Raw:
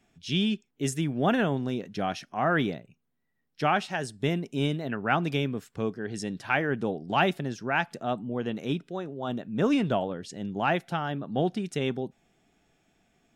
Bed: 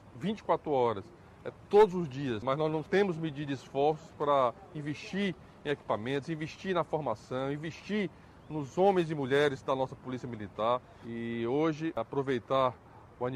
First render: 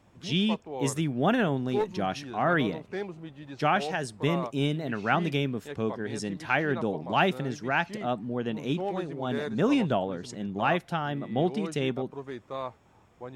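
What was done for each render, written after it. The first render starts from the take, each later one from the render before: add bed -7.5 dB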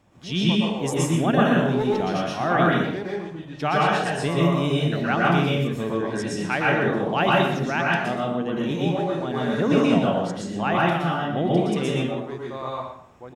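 on a send: delay 122 ms -9.5 dB; on the sum: plate-style reverb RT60 0.55 s, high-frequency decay 0.8×, pre-delay 105 ms, DRR -4 dB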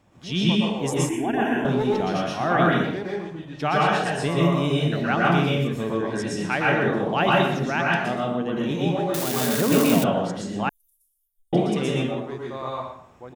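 1.09–1.65 s: static phaser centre 830 Hz, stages 8; 9.14–10.04 s: zero-crossing glitches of -14 dBFS; 10.69–11.53 s: inverse Chebyshev band-stop 130–2500 Hz, stop band 80 dB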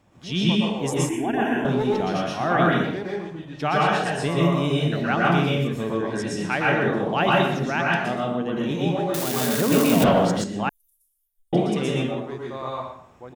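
10.00–10.44 s: waveshaping leveller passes 2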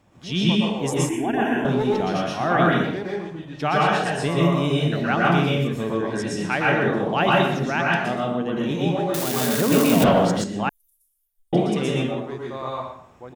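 trim +1 dB

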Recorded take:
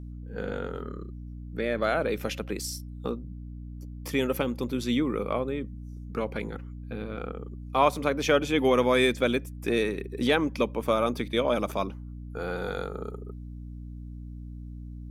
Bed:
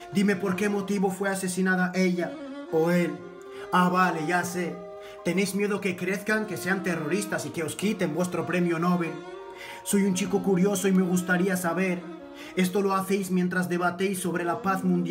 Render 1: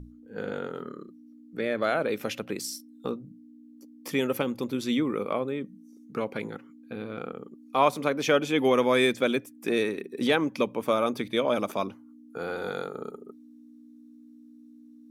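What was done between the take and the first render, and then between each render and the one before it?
hum notches 60/120/180 Hz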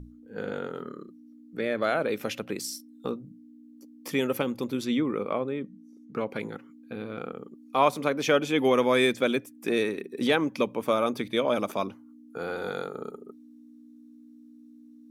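4.85–6.30 s: low-pass 3.6 kHz 6 dB/octave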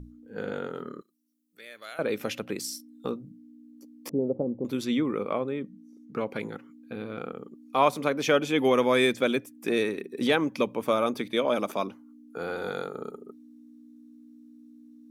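1.01–1.99 s: pre-emphasis filter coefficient 0.97; 4.09–4.65 s: steep low-pass 700 Hz; 11.14–12.38 s: high-pass 150 Hz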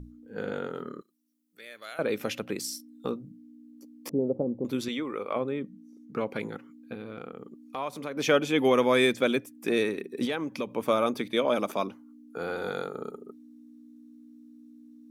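4.88–5.36 s: peaking EQ 160 Hz -12.5 dB 2 oct; 6.94–8.17 s: compression 2:1, threshold -38 dBFS; 10.25–10.72 s: compression 2:1, threshold -32 dBFS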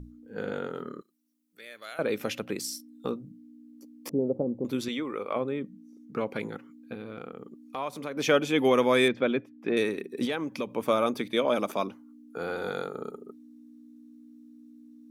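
9.08–9.77 s: distance through air 300 m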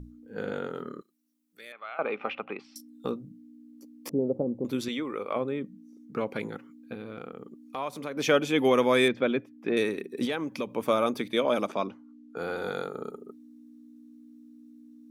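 1.72–2.76 s: cabinet simulation 310–2700 Hz, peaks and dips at 320 Hz -5 dB, 520 Hz -4 dB, 810 Hz +8 dB, 1.2 kHz +9 dB, 1.7 kHz -6 dB, 2.5 kHz +5 dB; 11.67–12.37 s: distance through air 90 m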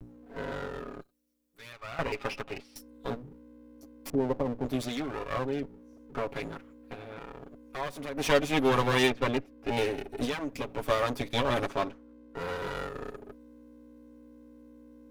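comb filter that takes the minimum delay 7.2 ms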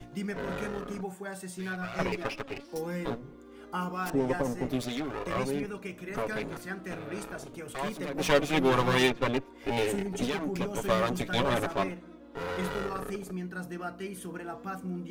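add bed -12 dB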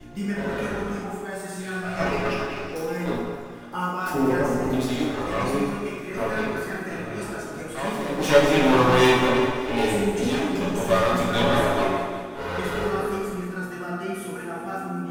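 thinning echo 191 ms, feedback 60%, level -11 dB; plate-style reverb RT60 1.5 s, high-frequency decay 0.55×, DRR -6 dB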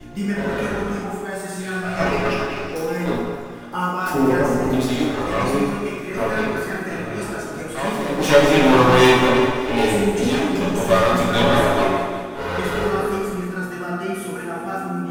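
trim +4.5 dB; peak limiter -1 dBFS, peak gain reduction 2 dB

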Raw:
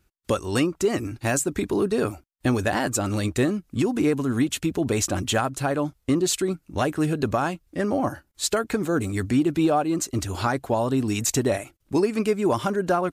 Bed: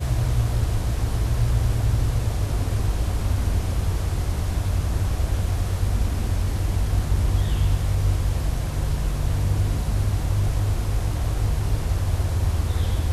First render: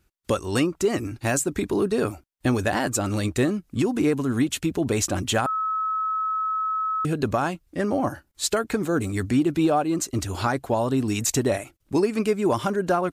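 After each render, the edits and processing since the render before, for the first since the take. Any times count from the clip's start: 5.46–7.05 s: bleep 1.29 kHz -22.5 dBFS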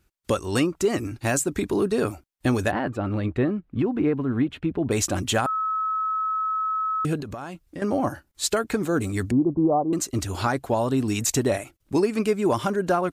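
2.71–4.91 s: distance through air 480 m; 7.20–7.82 s: compression 10:1, threshold -30 dBFS; 9.31–9.93 s: steep low-pass 1.1 kHz 72 dB/octave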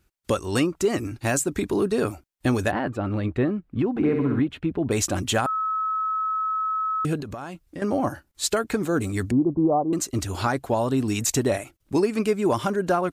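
3.90–4.40 s: flutter echo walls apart 11.1 m, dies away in 0.89 s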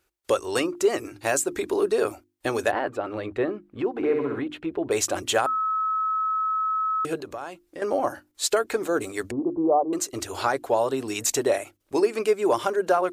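resonant low shelf 290 Hz -11.5 dB, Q 1.5; hum notches 50/100/150/200/250/300/350 Hz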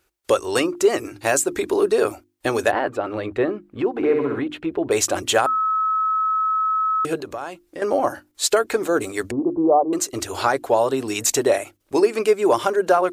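trim +4.5 dB

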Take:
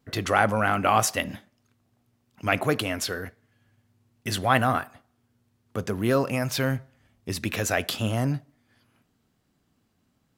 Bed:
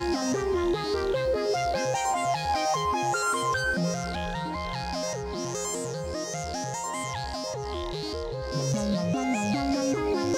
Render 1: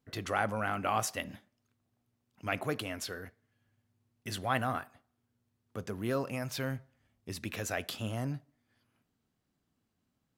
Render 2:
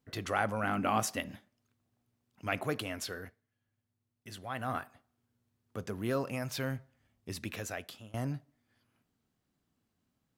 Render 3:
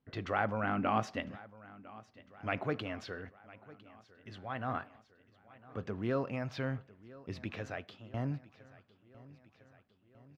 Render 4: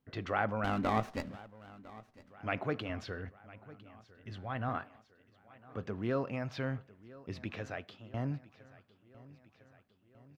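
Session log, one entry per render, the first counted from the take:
trim -10 dB
0.63–1.20 s: peaking EQ 240 Hz +10 dB 0.7 oct; 3.25–4.76 s: dip -8.5 dB, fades 0.19 s; 7.40–8.14 s: fade out, to -22 dB
distance through air 230 m; feedback delay 1004 ms, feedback 60%, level -20 dB
0.64–2.33 s: sliding maximum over 9 samples; 2.89–4.69 s: bass shelf 110 Hz +12 dB

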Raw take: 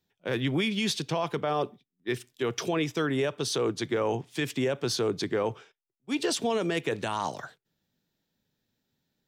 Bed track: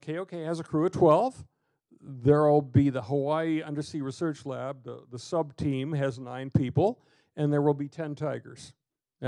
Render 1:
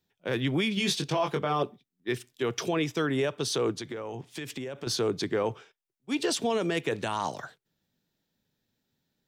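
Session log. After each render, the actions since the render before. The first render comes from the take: 0.75–1.63 s: doubling 21 ms -4.5 dB; 3.76–4.87 s: compression, threshold -33 dBFS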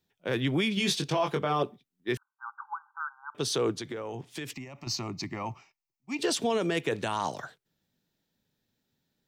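2.17–3.35 s: brick-wall FIR band-pass 790–1600 Hz; 4.53–6.19 s: static phaser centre 2.3 kHz, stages 8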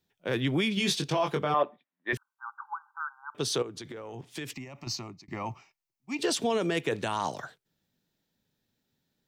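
1.54–2.13 s: cabinet simulation 330–3300 Hz, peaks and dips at 400 Hz -9 dB, 600 Hz +8 dB, 1 kHz +6 dB, 1.8 kHz +8 dB, 3 kHz -3 dB; 3.62–4.33 s: compression 16:1, threshold -36 dBFS; 4.84–5.28 s: fade out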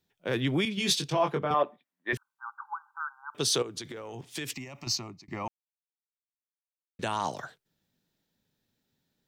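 0.65–1.51 s: three bands expanded up and down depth 100%; 3.33–4.98 s: treble shelf 2.7 kHz +6.5 dB; 5.48–6.99 s: mute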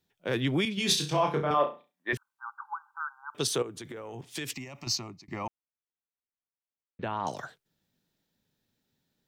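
0.86–2.11 s: flutter echo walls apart 5.8 m, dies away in 0.3 s; 3.47–4.22 s: peaking EQ 4.7 kHz -10 dB 1 oct; 5.47–7.27 s: distance through air 460 m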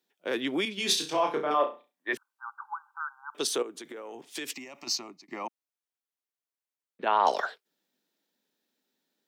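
7.06–7.60 s: time-frequency box 380–5600 Hz +10 dB; high-pass 250 Hz 24 dB/octave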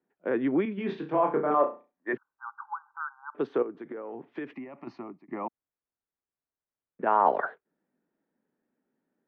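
low-pass 1.8 kHz 24 dB/octave; bass shelf 330 Hz +9.5 dB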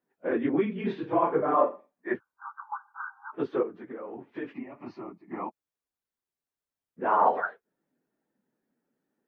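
phase randomisation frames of 50 ms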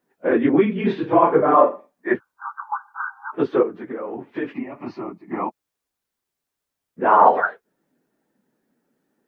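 trim +9.5 dB; peak limiter -2 dBFS, peak gain reduction 1 dB

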